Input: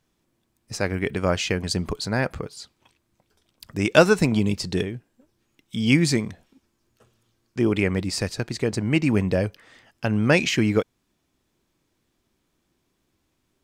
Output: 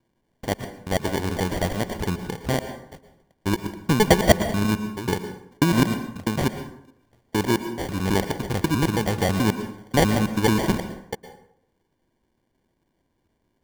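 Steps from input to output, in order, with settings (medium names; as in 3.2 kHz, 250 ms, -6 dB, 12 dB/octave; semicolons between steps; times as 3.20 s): slices played last to first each 108 ms, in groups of 4; sample-and-hold 34×; plate-style reverb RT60 0.72 s, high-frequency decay 0.65×, pre-delay 100 ms, DRR 9.5 dB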